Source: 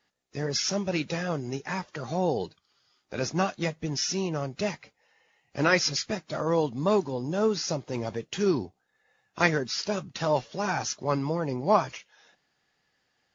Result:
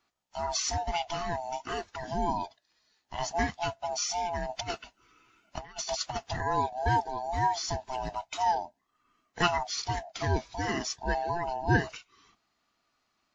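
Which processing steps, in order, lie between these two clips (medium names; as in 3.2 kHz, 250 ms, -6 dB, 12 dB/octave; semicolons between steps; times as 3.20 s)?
split-band scrambler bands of 500 Hz; 4.49–6.34 s: compressor with a negative ratio -32 dBFS, ratio -0.5; trim -2.5 dB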